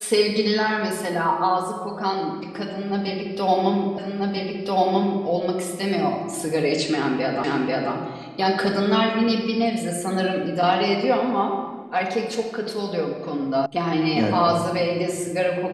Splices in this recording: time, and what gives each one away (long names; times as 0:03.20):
0:03.98: the same again, the last 1.29 s
0:07.44: the same again, the last 0.49 s
0:13.66: cut off before it has died away